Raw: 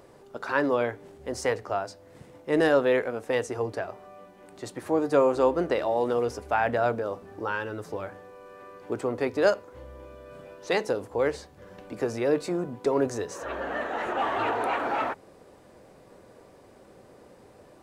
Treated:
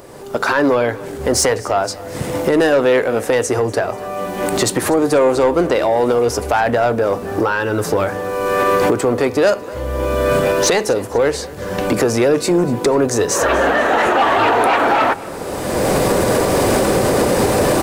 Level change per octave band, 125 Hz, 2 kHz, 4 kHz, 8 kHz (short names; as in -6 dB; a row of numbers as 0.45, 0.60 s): +16.5, +13.0, +17.0, +23.5 dB